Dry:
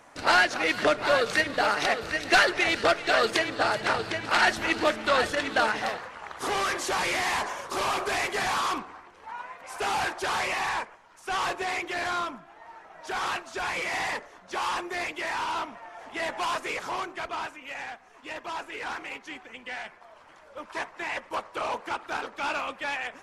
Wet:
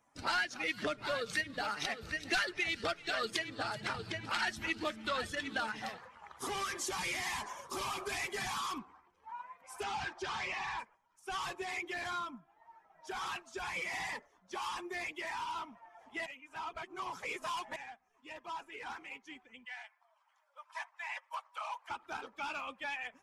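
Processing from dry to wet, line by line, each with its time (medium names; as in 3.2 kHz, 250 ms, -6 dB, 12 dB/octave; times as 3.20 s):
9.83–10.79 s: low-pass 5.9 kHz
16.26–17.76 s: reverse
19.65–21.90 s: high-pass 690 Hz 24 dB/octave
whole clip: expander on every frequency bin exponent 1.5; dynamic bell 610 Hz, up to -7 dB, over -41 dBFS, Q 0.78; compression 2:1, threshold -36 dBFS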